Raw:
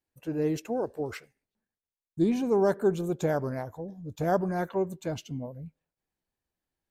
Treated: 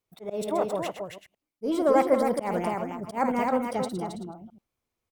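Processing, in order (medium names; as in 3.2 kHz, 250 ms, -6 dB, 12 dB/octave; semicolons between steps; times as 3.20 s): chunks repeated in reverse 112 ms, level -9.5 dB; on a send: delay 365 ms -6 dB; on the sum: speed mistake 33 rpm record played at 45 rpm; slow attack 143 ms; trim +2.5 dB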